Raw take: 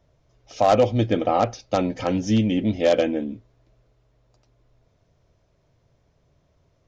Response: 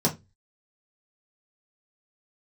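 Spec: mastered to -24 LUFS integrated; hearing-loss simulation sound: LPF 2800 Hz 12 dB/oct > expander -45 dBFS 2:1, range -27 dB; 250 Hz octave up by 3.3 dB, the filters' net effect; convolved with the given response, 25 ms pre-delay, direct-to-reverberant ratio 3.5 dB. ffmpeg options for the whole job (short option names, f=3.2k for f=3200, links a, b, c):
-filter_complex "[0:a]equalizer=f=250:t=o:g=4,asplit=2[a][b];[1:a]atrim=start_sample=2205,adelay=25[c];[b][c]afir=irnorm=-1:irlink=0,volume=-15dB[d];[a][d]amix=inputs=2:normalize=0,lowpass=2.8k,agate=range=-27dB:threshold=-45dB:ratio=2,volume=-9.5dB"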